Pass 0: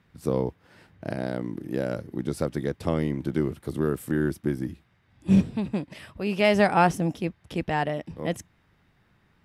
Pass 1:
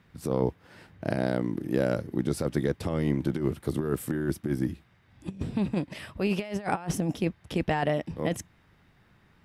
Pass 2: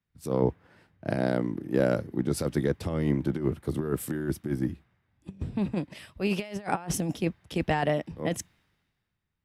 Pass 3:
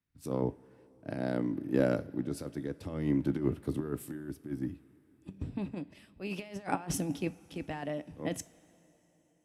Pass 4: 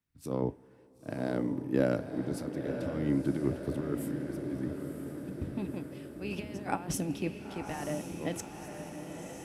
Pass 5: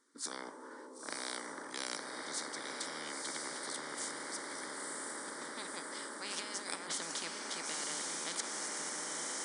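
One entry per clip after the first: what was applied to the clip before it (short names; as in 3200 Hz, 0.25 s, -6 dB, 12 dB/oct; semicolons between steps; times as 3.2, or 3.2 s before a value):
negative-ratio compressor -26 dBFS, ratio -0.5
three-band expander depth 70%
small resonant body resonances 280/2600 Hz, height 8 dB, ringing for 90 ms; tremolo 0.58 Hz, depth 66%; two-slope reverb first 0.32 s, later 4.4 s, from -18 dB, DRR 14.5 dB; gain -4 dB
diffused feedback echo 0.983 s, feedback 62%, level -7 dB
brick-wall FIR band-pass 190–10000 Hz; fixed phaser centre 710 Hz, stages 6; spectral compressor 10:1; gain -2.5 dB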